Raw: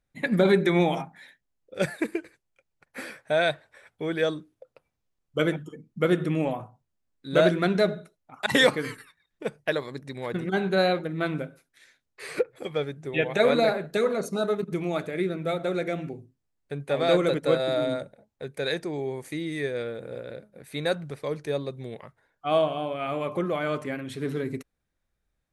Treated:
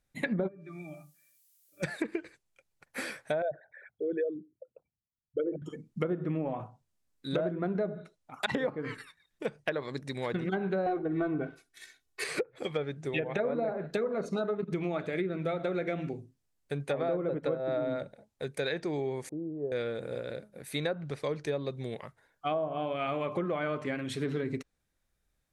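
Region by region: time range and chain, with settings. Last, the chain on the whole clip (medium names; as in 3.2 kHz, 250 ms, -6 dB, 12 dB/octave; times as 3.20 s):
0.47–1.82 s: rippled Chebyshev low-pass 7.1 kHz, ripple 9 dB + pitch-class resonator D, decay 0.19 s + added noise violet -69 dBFS
3.42–5.62 s: resonances exaggerated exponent 3 + high-pass 190 Hz 6 dB/octave
10.86–12.24 s: peaking EQ 170 Hz +5.5 dB 0.26 oct + comb 2.7 ms, depth 91% + waveshaping leveller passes 1
19.29–19.72 s: inverse Chebyshev low-pass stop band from 1.9 kHz, stop band 50 dB + bass shelf 350 Hz -9 dB
whole clip: low-pass that closes with the level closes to 980 Hz, closed at -20 dBFS; treble shelf 4.3 kHz +6.5 dB; compression 6:1, threshold -28 dBFS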